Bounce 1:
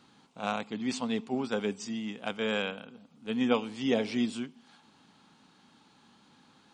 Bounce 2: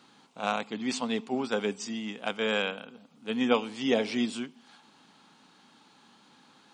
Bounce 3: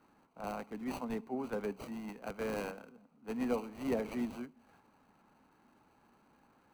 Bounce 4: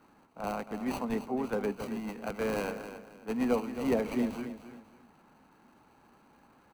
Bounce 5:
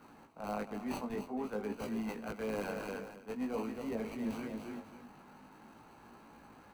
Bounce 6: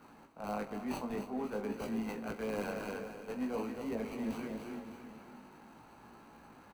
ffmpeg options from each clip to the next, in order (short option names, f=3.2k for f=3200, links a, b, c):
-af "highpass=f=260:p=1,volume=3.5dB"
-filter_complex "[0:a]acrossover=split=230|560|2100[a][b][c][d];[c]alimiter=level_in=3dB:limit=-24dB:level=0:latency=1:release=29,volume=-3dB[e];[d]acrusher=samples=25:mix=1:aa=0.000001[f];[a][b][e][f]amix=inputs=4:normalize=0,volume=-7.5dB"
-af "aecho=1:1:270|540|810:0.282|0.0846|0.0254,volume=5.5dB"
-af "areverse,acompressor=threshold=-41dB:ratio=5,areverse,flanger=delay=17.5:depth=3:speed=0.49,volume=7.5dB"
-af "aecho=1:1:44|225|606|790:0.188|0.15|0.2|0.106"